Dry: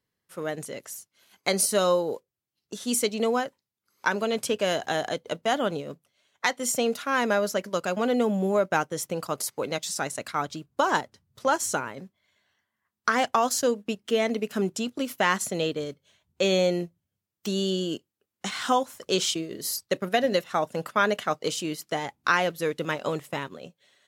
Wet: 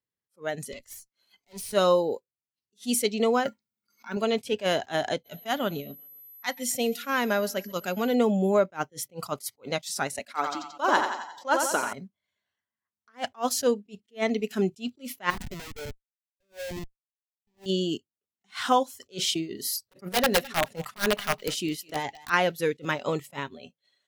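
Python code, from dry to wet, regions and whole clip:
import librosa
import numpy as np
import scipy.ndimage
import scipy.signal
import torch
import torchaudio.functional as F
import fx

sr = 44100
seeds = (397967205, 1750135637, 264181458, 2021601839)

y = fx.chain(x, sr, fx.tube_stage(drive_db=34.0, bias=0.8),
    fx.band_squash(depth_pct=40), at=(0.72, 1.73))
y = fx.chain(y, sr, fx.block_float(bits=7),
    fx.over_compress(threshold_db=-35.0, ratio=-1.0),
    fx.small_body(hz=(220.0, 1400.0, 2200.0), ring_ms=100, db=13), at=(3.45, 4.17))
y = fx.peak_eq(y, sr, hz=760.0, db=-4.0, octaves=2.8, at=(5.24, 8.13), fade=0.02)
y = fx.dmg_tone(y, sr, hz=12000.0, level_db=-49.0, at=(5.24, 8.13), fade=0.02)
y = fx.echo_feedback(y, sr, ms=130, feedback_pct=59, wet_db=-23, at=(5.24, 8.13), fade=0.02)
y = fx.chain(y, sr, fx.highpass(hz=230.0, slope=12),
    fx.echo_feedback(ms=88, feedback_pct=58, wet_db=-6.5), at=(10.19, 11.93))
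y = fx.chain(y, sr, fx.median_filter(points=15),
    fx.highpass(hz=900.0, slope=6),
    fx.schmitt(flips_db=-37.0), at=(15.3, 17.66))
y = fx.chain(y, sr, fx.overflow_wrap(gain_db=16.0),
    fx.echo_feedback(ms=210, feedback_pct=26, wet_db=-18), at=(19.78, 22.3))
y = fx.noise_reduce_blind(y, sr, reduce_db=15)
y = fx.dynamic_eq(y, sr, hz=7200.0, q=1.9, threshold_db=-46.0, ratio=4.0, max_db=-5)
y = fx.attack_slew(y, sr, db_per_s=340.0)
y = y * 10.0 ** (1.5 / 20.0)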